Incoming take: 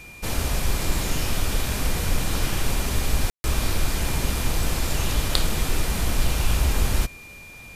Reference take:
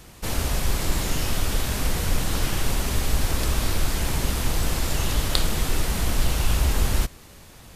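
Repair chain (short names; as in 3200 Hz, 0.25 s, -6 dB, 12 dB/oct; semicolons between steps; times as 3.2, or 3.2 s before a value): notch 2400 Hz, Q 30; room tone fill 3.3–3.44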